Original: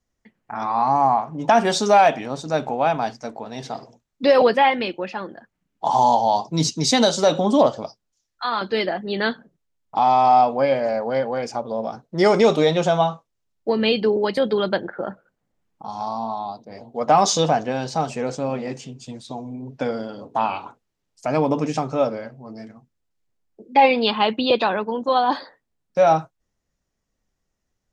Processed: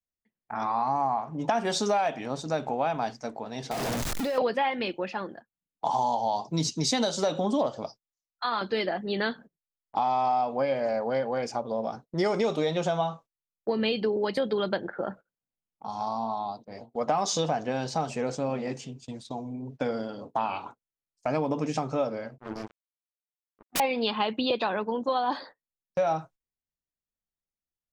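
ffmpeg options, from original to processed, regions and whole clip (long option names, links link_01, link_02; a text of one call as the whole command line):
ffmpeg -i in.wav -filter_complex "[0:a]asettb=1/sr,asplit=3[link_01][link_02][link_03];[link_01]atrim=end=3.714[link_04];[link_02]atrim=start=3.71:end=4.38,asetpts=PTS-STARTPTS,afade=type=in:duration=0.004:curve=qsin,afade=type=out:start_time=0.666:duration=0.004:curve=qsin,aeval=exprs='val(0)+0.5*0.1*sgn(val(0))':channel_layout=same,acompressor=threshold=-25dB:ratio=4:attack=3.2:release=140:knee=1:detection=peak[link_05];[link_03]atrim=start=4.376[link_06];[link_04][link_05]acrossfade=duration=0.004:curve1=hsin:curve2=qsin[link_07];[link_07][link_06]acrossfade=duration=0.004:curve1=qsin:curve2=hsin,asettb=1/sr,asplit=3[link_08][link_09][link_10];[link_08]atrim=end=22.384[link_11];[link_09]atrim=start=22.38:end=23.8,asetpts=PTS-STARTPTS,afade=type=in:duration=0.004:curve=qsin,afade=type=out:start_time=1.416:duration=0.004:curve=qsin,equalizer=frequency=350:width_type=o:width=0.66:gain=10,aeval=exprs='(mod(8.41*val(0)+1,2)-1)/8.41':channel_layout=same,acrusher=bits=4:mix=0:aa=0.5[link_12];[link_10]atrim=start=23.796[link_13];[link_11][link_12]acrossfade=duration=0.004:curve1=hsin:curve2=qsin[link_14];[link_14][link_13]acrossfade=duration=0.004:curve1=qsin:curve2=hsin,agate=range=-19dB:threshold=-40dB:ratio=16:detection=peak,acompressor=threshold=-20dB:ratio=4,volume=-3.5dB" out.wav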